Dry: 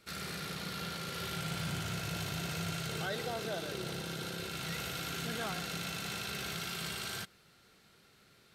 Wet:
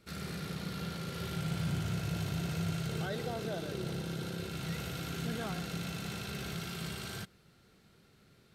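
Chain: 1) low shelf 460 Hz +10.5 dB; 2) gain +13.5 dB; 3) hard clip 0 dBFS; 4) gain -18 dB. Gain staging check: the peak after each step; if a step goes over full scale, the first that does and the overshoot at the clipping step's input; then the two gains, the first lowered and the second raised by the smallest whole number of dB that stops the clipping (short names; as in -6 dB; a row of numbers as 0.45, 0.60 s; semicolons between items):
-19.0, -5.5, -5.5, -23.5 dBFS; no overload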